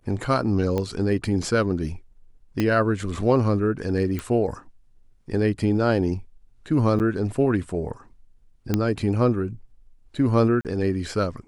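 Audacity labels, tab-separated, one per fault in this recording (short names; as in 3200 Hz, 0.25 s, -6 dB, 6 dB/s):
0.780000	0.780000	pop -14 dBFS
2.600000	2.600000	pop -11 dBFS
4.190000	4.190000	pop
6.990000	7.000000	gap 8.5 ms
8.740000	8.740000	pop -8 dBFS
10.610000	10.650000	gap 38 ms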